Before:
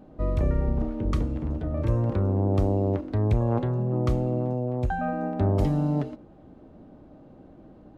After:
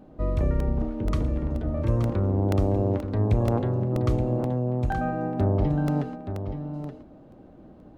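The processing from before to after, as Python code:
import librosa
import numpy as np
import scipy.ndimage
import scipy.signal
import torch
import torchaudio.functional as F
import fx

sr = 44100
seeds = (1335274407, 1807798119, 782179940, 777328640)

y = fx.air_absorb(x, sr, metres=250.0, at=(5.44, 5.85), fade=0.02)
y = y + 10.0 ** (-9.0 / 20.0) * np.pad(y, (int(875 * sr / 1000.0), 0))[:len(y)]
y = fx.buffer_crackle(y, sr, first_s=0.6, period_s=0.48, block=64, kind='repeat')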